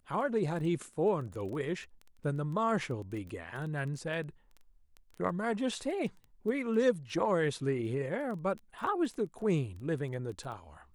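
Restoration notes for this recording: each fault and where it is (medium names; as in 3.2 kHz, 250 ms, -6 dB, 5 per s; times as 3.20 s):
crackle 11 per s -39 dBFS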